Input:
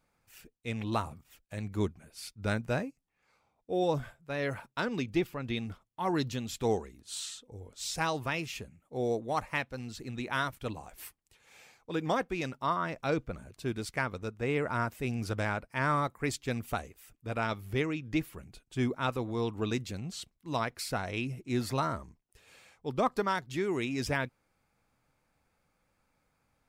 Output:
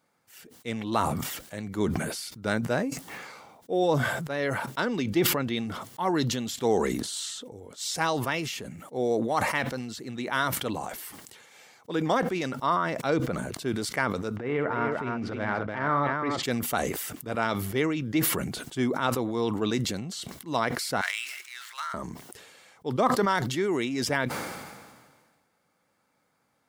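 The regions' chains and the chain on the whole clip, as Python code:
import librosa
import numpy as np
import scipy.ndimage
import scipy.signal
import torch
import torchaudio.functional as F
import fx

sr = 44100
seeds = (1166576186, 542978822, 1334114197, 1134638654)

y = fx.chain(x, sr, fx.lowpass(hz=2600.0, slope=12),
    fx.echo_multitap(ms=(56, 295), db=(-11.0, -6.5)),
    fx.transient(attack_db=-10, sustain_db=-1), at=(14.36, 16.43))
y = fx.chain(y, sr, fx.median_filter(points=9),
    fx.highpass(hz=1400.0, slope=24), at=(21.01, 21.94))
y = scipy.signal.sosfilt(scipy.signal.butter(2, 170.0, 'highpass', fs=sr, output='sos'), y)
y = fx.notch(y, sr, hz=2500.0, q=8.9)
y = fx.sustainer(y, sr, db_per_s=36.0)
y = y * librosa.db_to_amplitude(4.5)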